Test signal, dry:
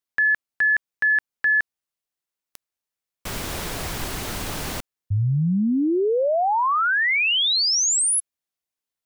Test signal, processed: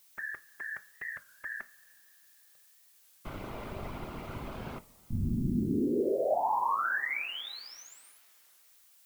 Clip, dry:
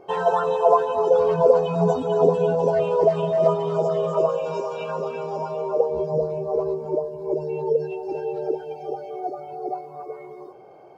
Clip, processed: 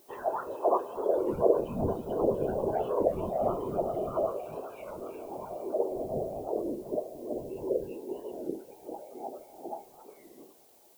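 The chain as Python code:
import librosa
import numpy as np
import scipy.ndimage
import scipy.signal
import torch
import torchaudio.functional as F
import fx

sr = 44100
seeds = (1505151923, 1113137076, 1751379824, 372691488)

y = scipy.signal.sosfilt(scipy.signal.butter(2, 1800.0, 'lowpass', fs=sr, output='sos'), x)
y = fx.noise_reduce_blind(y, sr, reduce_db=9)
y = fx.whisperise(y, sr, seeds[0])
y = fx.dmg_noise_colour(y, sr, seeds[1], colour='blue', level_db=-53.0)
y = fx.rev_double_slope(y, sr, seeds[2], early_s=0.25, late_s=3.3, knee_db=-20, drr_db=11.0)
y = fx.record_warp(y, sr, rpm=33.33, depth_cents=160.0)
y = F.gain(torch.from_numpy(y), -9.0).numpy()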